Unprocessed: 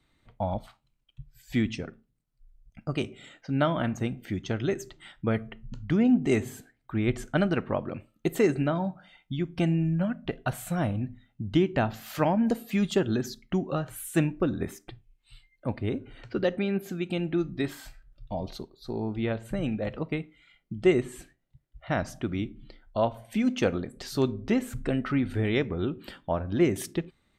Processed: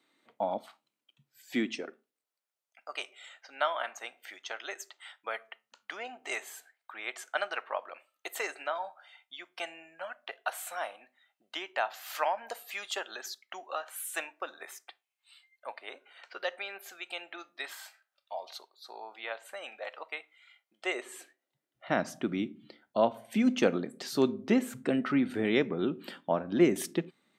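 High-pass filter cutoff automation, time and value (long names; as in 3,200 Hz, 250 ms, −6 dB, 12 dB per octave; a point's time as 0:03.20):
high-pass filter 24 dB per octave
0:01.60 260 Hz
0:02.88 690 Hz
0:20.77 690 Hz
0:22.00 180 Hz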